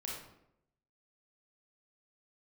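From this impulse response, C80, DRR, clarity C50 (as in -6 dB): 5.0 dB, -4.0 dB, 0.5 dB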